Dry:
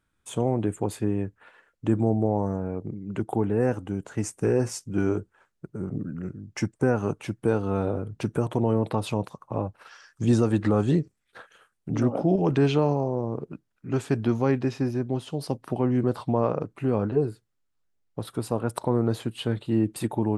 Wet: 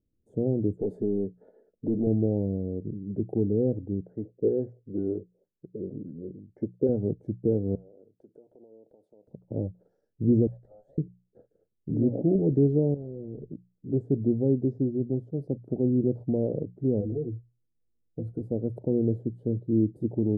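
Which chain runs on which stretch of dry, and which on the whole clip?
0.79–2.07 s: overdrive pedal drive 21 dB, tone 2.9 kHz, clips at -11 dBFS + comb 4.7 ms, depth 40% + compression 1.5:1, threshold -30 dBFS
4.01–6.89 s: LFO low-pass square 2.1 Hz 510–2000 Hz + bass shelf 240 Hz -11.5 dB
7.75–9.28 s: high-pass 730 Hz + compression 10:1, threshold -44 dBFS
10.47–10.98 s: steep high-pass 570 Hz 72 dB/octave + compression 5:1, threshold -37 dBFS + valve stage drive 33 dB, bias 0.5
12.94–13.51 s: CVSD coder 16 kbps + valve stage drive 32 dB, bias 0.45
17.00–18.41 s: rippled EQ curve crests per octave 1.9, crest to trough 16 dB + compression 5:1, threshold -26 dBFS
whole clip: inverse Chebyshev low-pass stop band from 1 kHz, stop band 40 dB; hum notches 60/120/180 Hz

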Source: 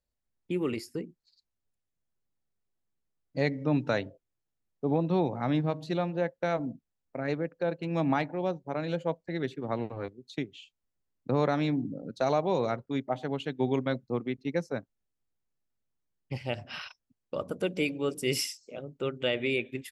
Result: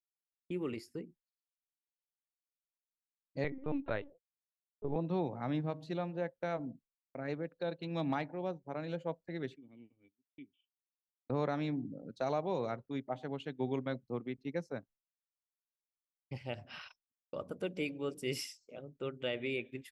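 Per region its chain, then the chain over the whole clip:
3.44–4.96 s: steep high-pass 220 Hz 48 dB/octave + LPC vocoder at 8 kHz pitch kept
7.43–8.15 s: peaking EQ 3.8 kHz +12 dB 0.41 oct + hard clipper -17 dBFS
9.56–11.30 s: cascade formant filter i + tilt shelf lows -8 dB, about 1.5 kHz
whole clip: expander -48 dBFS; treble shelf 4.9 kHz -5 dB; trim -7.5 dB

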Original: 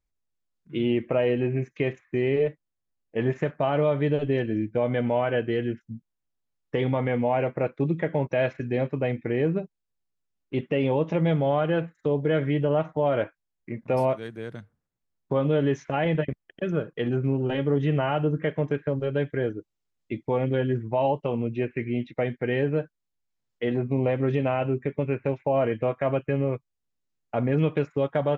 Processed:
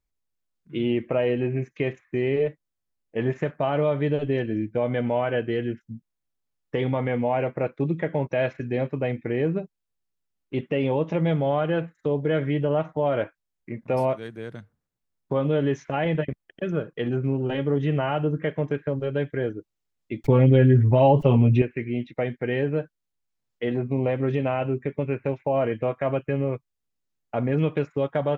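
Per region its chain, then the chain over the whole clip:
20.24–21.62 s: bass shelf 140 Hz +10 dB + comb 7.3 ms, depth 87% + level flattener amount 70%
whole clip: none

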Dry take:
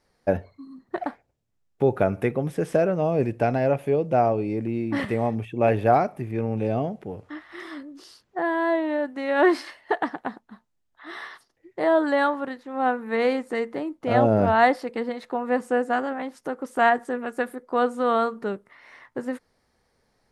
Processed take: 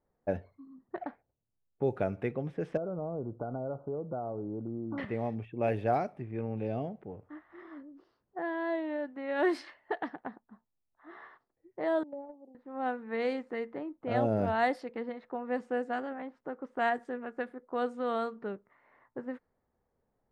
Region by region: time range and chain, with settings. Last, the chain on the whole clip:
2.77–4.98 s: compression 4:1, threshold -23 dBFS + brick-wall FIR low-pass 1.5 kHz
12.03–12.55 s: elliptic band-pass 220–760 Hz + gate -25 dBFS, range -13 dB + compression, threshold -28 dBFS
whole clip: level-controlled noise filter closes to 1 kHz, open at -15 dBFS; dynamic bell 1.1 kHz, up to -4 dB, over -35 dBFS, Q 1.8; trim -9 dB

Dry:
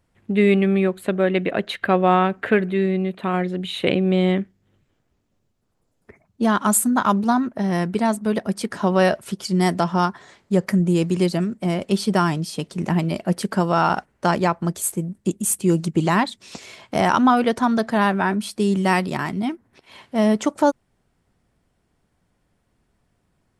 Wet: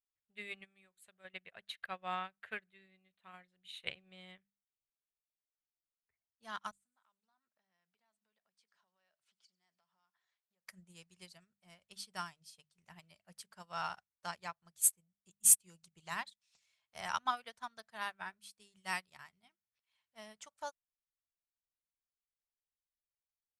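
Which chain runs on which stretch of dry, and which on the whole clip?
0.64–1.25 s: peaking EQ 7.8 kHz +10 dB 0.96 oct + compression 1.5:1, threshold -25 dBFS
6.71–10.66 s: compression 8:1, threshold -31 dBFS + band-pass 210–5300 Hz + feedback echo behind a high-pass 97 ms, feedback 68%, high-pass 4.2 kHz, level -17.5 dB
whole clip: amplifier tone stack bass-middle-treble 10-0-10; hum notches 50/100/150/200 Hz; upward expansion 2.5:1, over -42 dBFS

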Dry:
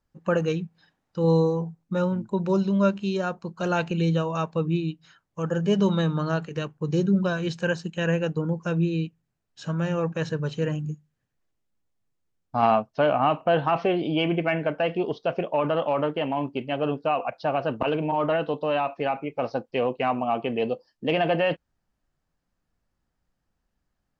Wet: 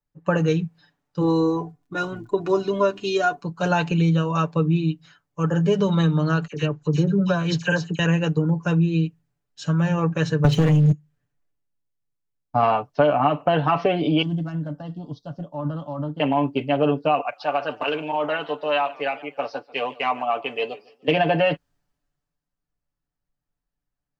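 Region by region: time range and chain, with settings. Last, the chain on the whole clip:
1.20–3.40 s: comb 2.8 ms, depth 80% + crackle 21 per s -54 dBFS
6.47–7.99 s: phase dispersion lows, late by 52 ms, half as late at 2.2 kHz + careless resampling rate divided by 3×, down none, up filtered
10.44–10.92 s: bass shelf 160 Hz +6 dB + waveshaping leveller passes 3 + three bands compressed up and down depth 40%
14.22–16.20 s: high-order bell 1.3 kHz -13.5 dB 2.5 oct + static phaser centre 1 kHz, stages 4
17.21–21.08 s: high-pass 960 Hz 6 dB/octave + modulated delay 148 ms, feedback 42%, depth 136 cents, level -19.5 dB
whole clip: comb 6.9 ms, depth 64%; compression 4:1, threshold -22 dBFS; three bands expanded up and down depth 40%; trim +5.5 dB

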